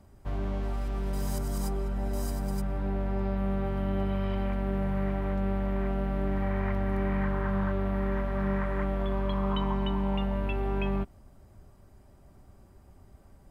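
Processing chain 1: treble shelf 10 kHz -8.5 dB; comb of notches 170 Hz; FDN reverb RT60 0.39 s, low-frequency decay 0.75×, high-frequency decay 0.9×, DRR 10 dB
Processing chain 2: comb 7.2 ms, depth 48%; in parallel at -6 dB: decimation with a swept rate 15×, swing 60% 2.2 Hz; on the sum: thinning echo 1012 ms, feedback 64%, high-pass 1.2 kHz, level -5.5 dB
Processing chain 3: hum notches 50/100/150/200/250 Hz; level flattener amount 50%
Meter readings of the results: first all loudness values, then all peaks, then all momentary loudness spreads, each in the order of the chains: -32.0 LUFS, -28.5 LUFS, -32.0 LUFS; -18.5 dBFS, -14.0 dBFS, -19.0 dBFS; 3 LU, 14 LU, 14 LU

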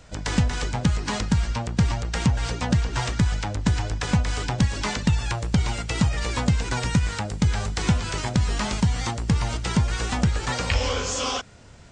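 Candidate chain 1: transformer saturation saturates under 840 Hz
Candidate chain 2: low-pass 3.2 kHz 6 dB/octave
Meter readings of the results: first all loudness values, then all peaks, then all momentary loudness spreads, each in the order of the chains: -29.0 LUFS, -25.0 LUFS; -7.5 dBFS, -8.0 dBFS; 2 LU, 3 LU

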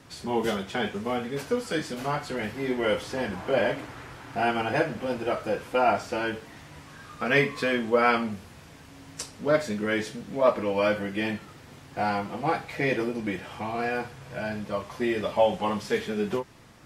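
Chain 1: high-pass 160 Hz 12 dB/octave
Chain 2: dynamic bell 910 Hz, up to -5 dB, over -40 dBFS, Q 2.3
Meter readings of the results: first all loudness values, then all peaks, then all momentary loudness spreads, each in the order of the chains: -28.0 LUFS, -28.5 LUFS; -7.5 dBFS, -8.5 dBFS; 13 LU, 16 LU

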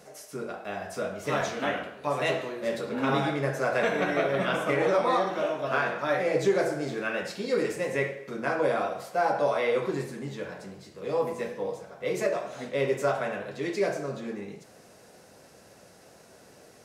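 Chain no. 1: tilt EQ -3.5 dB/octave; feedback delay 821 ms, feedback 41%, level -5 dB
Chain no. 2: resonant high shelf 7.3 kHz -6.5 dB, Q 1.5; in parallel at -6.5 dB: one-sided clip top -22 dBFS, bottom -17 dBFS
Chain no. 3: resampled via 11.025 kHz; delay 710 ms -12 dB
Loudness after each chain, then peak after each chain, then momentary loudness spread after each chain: -24.5 LUFS, -25.5 LUFS, -28.5 LUFS; -8.5 dBFS, -10.5 dBFS, -13.0 dBFS; 12 LU, 11 LU, 11 LU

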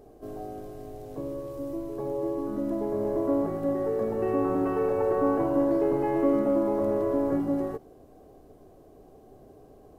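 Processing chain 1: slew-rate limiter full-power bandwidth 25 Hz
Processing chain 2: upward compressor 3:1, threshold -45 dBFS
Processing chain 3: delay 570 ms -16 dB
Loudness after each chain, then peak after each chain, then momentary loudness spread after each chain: -29.0 LUFS, -27.5 LUFS, -27.0 LUFS; -15.5 dBFS, -13.0 dBFS, -13.0 dBFS; 12 LU, 15 LU, 16 LU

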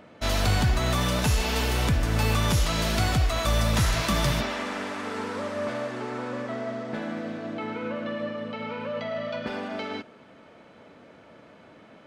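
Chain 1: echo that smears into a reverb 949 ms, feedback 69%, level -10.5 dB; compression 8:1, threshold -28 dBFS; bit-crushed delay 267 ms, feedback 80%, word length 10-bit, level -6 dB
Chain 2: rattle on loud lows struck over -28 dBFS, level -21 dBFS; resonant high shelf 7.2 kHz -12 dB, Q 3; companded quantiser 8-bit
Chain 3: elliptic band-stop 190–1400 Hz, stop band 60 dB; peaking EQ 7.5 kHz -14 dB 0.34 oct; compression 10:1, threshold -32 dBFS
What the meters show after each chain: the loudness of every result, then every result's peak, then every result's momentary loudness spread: -31.5 LUFS, -26.0 LUFS, -38.0 LUFS; -17.5 dBFS, -10.0 dBFS, -21.5 dBFS; 7 LU, 11 LU, 21 LU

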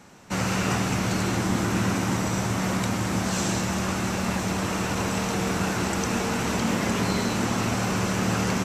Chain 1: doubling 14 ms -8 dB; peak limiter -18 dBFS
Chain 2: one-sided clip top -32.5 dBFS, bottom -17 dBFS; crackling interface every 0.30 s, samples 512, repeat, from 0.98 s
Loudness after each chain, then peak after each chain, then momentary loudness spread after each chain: -27.5 LUFS, -28.5 LUFS; -18.0 dBFS, -17.5 dBFS; 1 LU, 2 LU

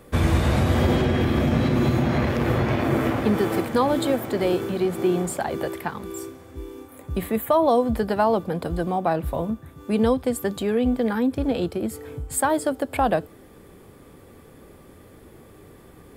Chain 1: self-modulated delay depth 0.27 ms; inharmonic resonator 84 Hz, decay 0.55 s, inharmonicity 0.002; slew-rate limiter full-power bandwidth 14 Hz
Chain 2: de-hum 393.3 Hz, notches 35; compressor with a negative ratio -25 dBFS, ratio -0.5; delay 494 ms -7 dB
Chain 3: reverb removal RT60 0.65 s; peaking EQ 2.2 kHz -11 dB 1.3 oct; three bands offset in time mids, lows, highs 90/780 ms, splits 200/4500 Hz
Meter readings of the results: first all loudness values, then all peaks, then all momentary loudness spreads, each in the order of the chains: -36.0 LUFS, -27.0 LUFS, -26.0 LUFS; -18.5 dBFS, -9.0 dBFS, -9.5 dBFS; 14 LU, 19 LU, 12 LU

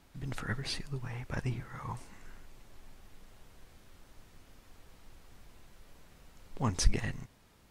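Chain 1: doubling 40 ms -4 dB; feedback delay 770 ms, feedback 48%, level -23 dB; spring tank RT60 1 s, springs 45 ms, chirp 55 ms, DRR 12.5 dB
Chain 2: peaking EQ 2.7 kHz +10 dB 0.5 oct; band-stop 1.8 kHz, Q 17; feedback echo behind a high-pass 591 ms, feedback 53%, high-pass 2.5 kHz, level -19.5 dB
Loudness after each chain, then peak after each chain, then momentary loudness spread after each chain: -35.0 LUFS, -36.0 LUFS; -9.0 dBFS, -10.5 dBFS; 22 LU, 23 LU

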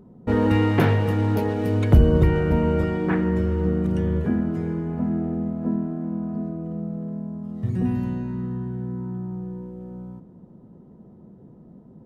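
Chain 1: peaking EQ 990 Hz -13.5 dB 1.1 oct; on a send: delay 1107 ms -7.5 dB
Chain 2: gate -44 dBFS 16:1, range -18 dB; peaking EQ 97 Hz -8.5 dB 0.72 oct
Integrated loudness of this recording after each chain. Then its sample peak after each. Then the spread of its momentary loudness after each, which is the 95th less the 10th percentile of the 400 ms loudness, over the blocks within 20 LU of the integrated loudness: -23.5 LUFS, -25.0 LUFS; -5.0 dBFS, -7.0 dBFS; 16 LU, 13 LU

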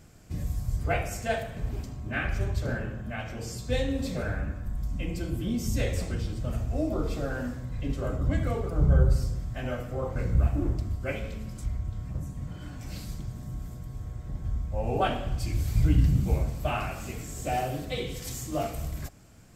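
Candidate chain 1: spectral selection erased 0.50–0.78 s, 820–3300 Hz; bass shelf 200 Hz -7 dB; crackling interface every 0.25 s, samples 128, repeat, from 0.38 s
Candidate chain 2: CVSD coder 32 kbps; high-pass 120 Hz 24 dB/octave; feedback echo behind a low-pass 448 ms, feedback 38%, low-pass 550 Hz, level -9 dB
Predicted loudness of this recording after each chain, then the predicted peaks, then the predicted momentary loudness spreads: -34.0 LUFS, -33.5 LUFS; -13.0 dBFS, -14.5 dBFS; 13 LU, 13 LU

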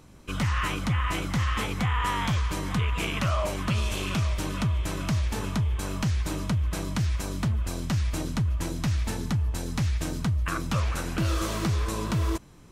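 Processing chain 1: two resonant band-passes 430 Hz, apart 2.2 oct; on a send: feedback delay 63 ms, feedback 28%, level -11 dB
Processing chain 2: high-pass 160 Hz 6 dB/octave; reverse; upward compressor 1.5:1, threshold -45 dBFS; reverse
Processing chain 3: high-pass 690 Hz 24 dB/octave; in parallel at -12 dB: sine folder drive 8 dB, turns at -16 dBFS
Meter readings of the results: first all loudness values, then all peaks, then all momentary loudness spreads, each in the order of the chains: -39.5 LUFS, -31.5 LUFS, -29.5 LUFS; -22.5 dBFS, -15.0 dBFS, -17.5 dBFS; 5 LU, 4 LU, 8 LU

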